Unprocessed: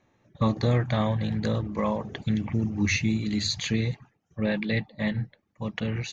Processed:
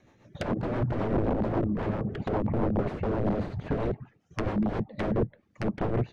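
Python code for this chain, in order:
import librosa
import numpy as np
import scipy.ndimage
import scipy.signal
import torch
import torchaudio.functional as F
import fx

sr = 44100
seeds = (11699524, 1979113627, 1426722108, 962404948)

y = (np.mod(10.0 ** (25.0 / 20.0) * x + 1.0, 2.0) - 1.0) / 10.0 ** (25.0 / 20.0)
y = fx.env_lowpass_down(y, sr, base_hz=730.0, full_db=-30.0)
y = fx.rotary(y, sr, hz=7.5)
y = y * 10.0 ** (8.0 / 20.0)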